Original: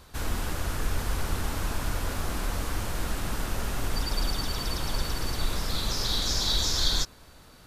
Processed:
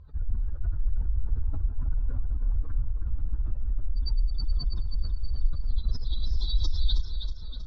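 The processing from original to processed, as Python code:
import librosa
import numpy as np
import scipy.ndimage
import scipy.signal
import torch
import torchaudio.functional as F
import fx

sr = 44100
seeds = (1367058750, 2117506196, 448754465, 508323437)

y = fx.spec_expand(x, sr, power=2.6)
y = fx.air_absorb(y, sr, metres=160.0)
y = fx.echo_feedback(y, sr, ms=319, feedback_pct=53, wet_db=-8.0)
y = F.gain(torch.from_numpy(y), 4.0).numpy()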